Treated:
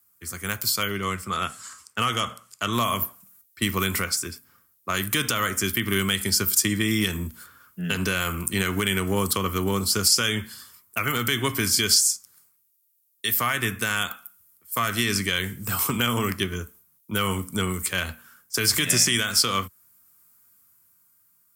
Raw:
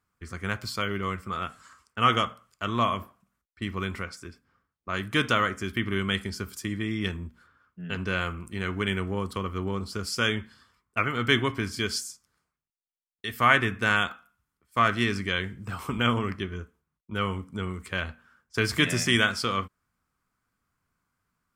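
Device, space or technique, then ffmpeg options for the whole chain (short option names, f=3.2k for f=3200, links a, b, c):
FM broadcast chain: -filter_complex "[0:a]asettb=1/sr,asplit=3[a][b][c];[a]atrim=end=0.914[d];[b]atrim=start=0.91:end=2.73,asetpts=PTS-STARTPTS,afade=t=in:d=0.004:c=qsin,afade=t=out:st=1.816:d=0.004:c=qsin,lowpass=7.9k[e];[c]atrim=start=2.726[f];[d][e]acrossfade=d=0.004:c1=hsin:c2=qsin[g];[g][f]acrossfade=d=0.004:c1=qsin:c2=hsin,highpass=f=76:w=0.5412,highpass=f=76:w=1.3066,dynaudnorm=f=130:g=17:m=10.5dB,acrossover=split=130|7900[h][i][j];[h]acompressor=threshold=-31dB:ratio=4[k];[i]acompressor=threshold=-19dB:ratio=4[l];[j]acompressor=threshold=-54dB:ratio=4[m];[k][l][m]amix=inputs=3:normalize=0,aemphasis=mode=production:type=50fm,alimiter=limit=-13dB:level=0:latency=1:release=108,asoftclip=type=hard:threshold=-14.5dB,lowpass=f=15k:w=0.5412,lowpass=f=15k:w=1.3066,aemphasis=mode=production:type=50fm"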